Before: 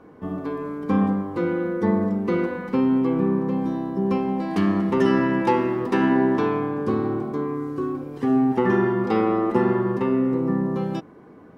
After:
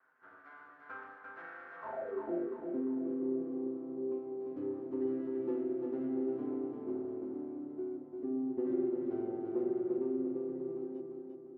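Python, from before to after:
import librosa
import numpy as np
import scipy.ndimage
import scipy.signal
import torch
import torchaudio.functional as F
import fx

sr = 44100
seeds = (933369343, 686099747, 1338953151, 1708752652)

y = fx.lower_of_two(x, sr, delay_ms=7.7)
y = fx.filter_sweep_bandpass(y, sr, from_hz=1500.0, to_hz=330.0, start_s=1.72, end_s=2.23, q=7.8)
y = fx.echo_feedback(y, sr, ms=346, feedback_pct=48, wet_db=-4.5)
y = F.gain(torch.from_numpy(y), -4.5).numpy()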